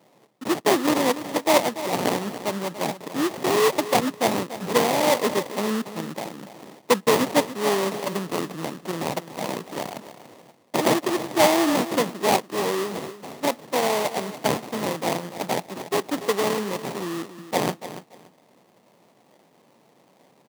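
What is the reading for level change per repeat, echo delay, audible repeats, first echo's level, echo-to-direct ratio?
-13.5 dB, 287 ms, 2, -13.0 dB, -13.0 dB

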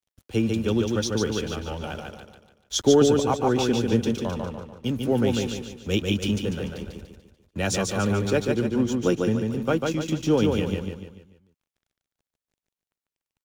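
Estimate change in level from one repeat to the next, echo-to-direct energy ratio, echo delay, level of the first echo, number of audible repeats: -7.5 dB, -2.5 dB, 146 ms, -3.5 dB, 5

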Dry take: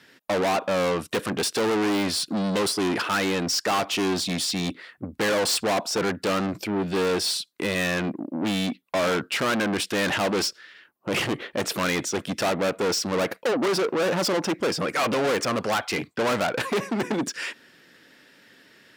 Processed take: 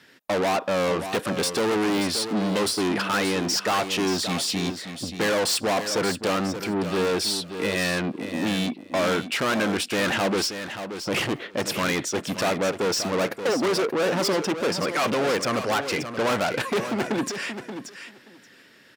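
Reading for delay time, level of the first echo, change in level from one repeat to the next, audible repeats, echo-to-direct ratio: 579 ms, -9.5 dB, -16.5 dB, 2, -9.5 dB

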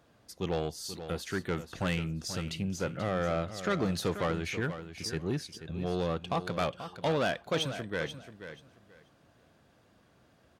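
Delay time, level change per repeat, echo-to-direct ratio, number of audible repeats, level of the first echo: 484 ms, -14.0 dB, -11.0 dB, 2, -11.0 dB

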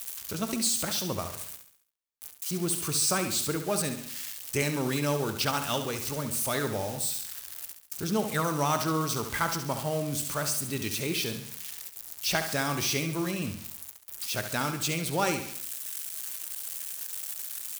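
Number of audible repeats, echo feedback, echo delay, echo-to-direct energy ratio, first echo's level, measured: 4, 47%, 69 ms, -8.0 dB, -9.0 dB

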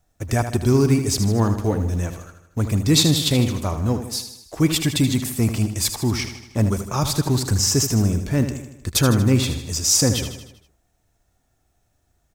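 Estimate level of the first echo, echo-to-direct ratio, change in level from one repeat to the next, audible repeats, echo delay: -9.5 dB, -8.0 dB, -5.0 dB, 5, 78 ms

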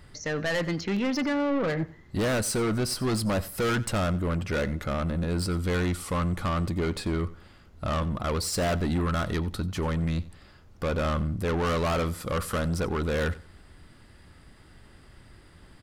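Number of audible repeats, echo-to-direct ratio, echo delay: 2, -19.0 dB, 91 ms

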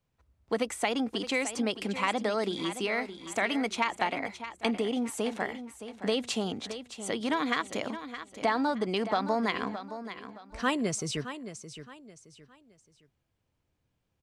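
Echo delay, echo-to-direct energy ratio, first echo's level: 618 ms, -11.0 dB, -11.5 dB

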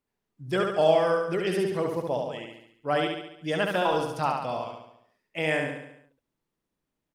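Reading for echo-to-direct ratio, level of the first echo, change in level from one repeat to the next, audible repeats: -2.5 dB, -4.0 dB, -5.5 dB, 6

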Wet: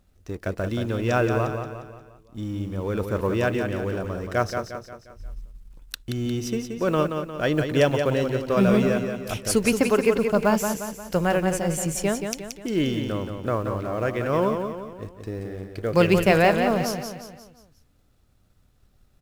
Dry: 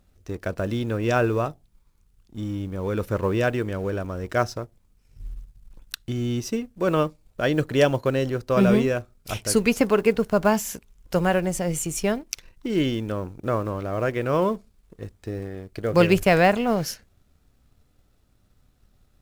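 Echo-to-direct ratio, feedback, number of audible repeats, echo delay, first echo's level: -5.5 dB, 46%, 5, 177 ms, -6.5 dB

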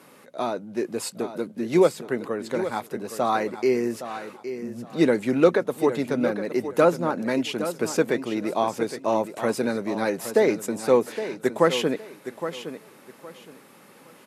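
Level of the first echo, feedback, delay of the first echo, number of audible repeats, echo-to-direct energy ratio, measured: -11.0 dB, 24%, 815 ms, 2, -10.5 dB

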